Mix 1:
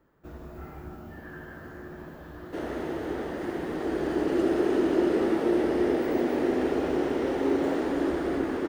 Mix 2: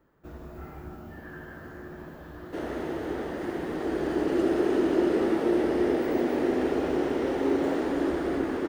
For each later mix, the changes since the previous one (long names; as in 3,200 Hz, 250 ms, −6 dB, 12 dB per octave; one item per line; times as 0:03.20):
nothing changed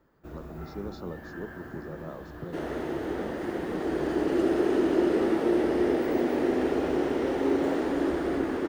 speech: unmuted